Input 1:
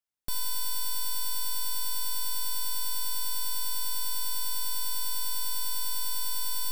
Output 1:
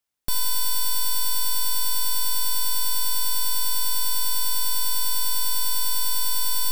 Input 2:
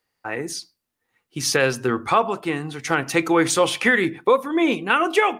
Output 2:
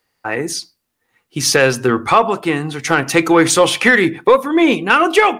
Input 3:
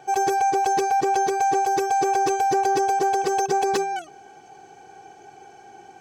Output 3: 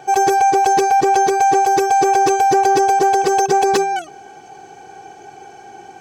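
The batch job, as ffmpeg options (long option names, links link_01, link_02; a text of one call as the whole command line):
ffmpeg -i in.wav -af "acontrast=51,volume=1.5dB" out.wav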